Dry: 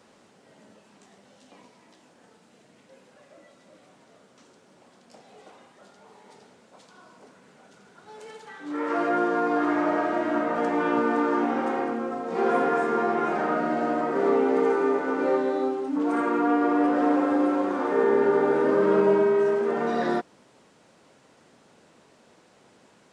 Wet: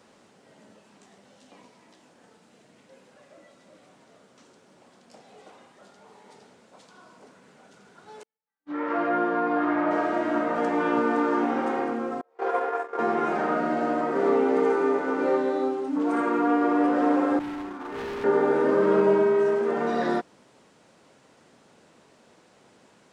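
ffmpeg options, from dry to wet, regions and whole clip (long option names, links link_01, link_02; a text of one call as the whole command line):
ffmpeg -i in.wav -filter_complex "[0:a]asettb=1/sr,asplit=3[link_01][link_02][link_03];[link_01]atrim=end=8.234[link_04];[link_02]atrim=start=8.23:end=9.91,asetpts=PTS-STARTPTS,afade=type=in:duration=0.004:curve=qsin,afade=type=out:start_time=1.676:duration=0.004:curve=qsin,lowpass=3100,agate=range=-50dB:threshold=-35dB:ratio=16:release=100:detection=peak,bandreject=frequency=410:width=5.2[link_05];[link_03]atrim=start=9.906[link_06];[link_04][link_05]acrossfade=duration=0.004:curve1=hsin:curve2=qsin[link_07];[link_07][link_06]acrossfade=duration=0.004:curve1=qsin:curve2=hsin,asettb=1/sr,asplit=3[link_08][link_09][link_10];[link_08]atrim=end=12.214[link_11];[link_09]atrim=start=12.21:end=12.99,asetpts=PTS-STARTPTS,afade=type=in:duration=0.004:curve=qsin,afade=type=out:start_time=0.776:duration=0.004:curve=qsin,agate=range=-31dB:threshold=-24dB:ratio=16:release=100:detection=peak,highpass=frequency=430:width=0.5412,highpass=frequency=430:width=1.3066,highshelf=frequency=2800:gain=-7[link_12];[link_10]atrim=start=12.986[link_13];[link_11][link_12]acrossfade=duration=0.004:curve1=hsin:curve2=qsin[link_14];[link_14][link_13]acrossfade=duration=0.004:curve1=qsin:curve2=hsin,asettb=1/sr,asplit=3[link_15][link_16][link_17];[link_15]atrim=end=17.394[link_18];[link_16]atrim=start=17.39:end=18.24,asetpts=PTS-STARTPTS,afade=type=in:duration=0.004:curve=qsin,afade=type=out:start_time=0.846:duration=0.004:curve=qsin,agate=range=-33dB:threshold=-21dB:ratio=3:release=100:detection=peak,equalizer=frequency=530:width=3.7:gain=-13.5,asoftclip=type=hard:threshold=-31.5dB[link_19];[link_17]atrim=start=18.236[link_20];[link_18][link_19]acrossfade=duration=0.004:curve1=hsin:curve2=qsin[link_21];[link_21][link_20]acrossfade=duration=0.004:curve1=qsin:curve2=hsin" out.wav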